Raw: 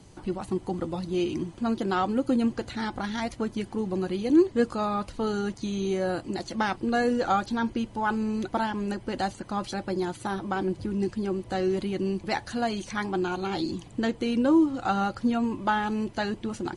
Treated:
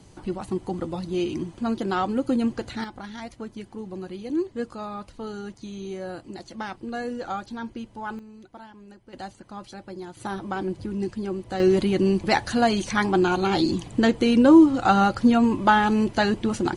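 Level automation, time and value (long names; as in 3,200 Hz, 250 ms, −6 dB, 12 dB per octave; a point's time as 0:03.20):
+1 dB
from 0:02.84 −6.5 dB
from 0:08.19 −17 dB
from 0:09.13 −8.5 dB
from 0:10.17 −0.5 dB
from 0:11.60 +7.5 dB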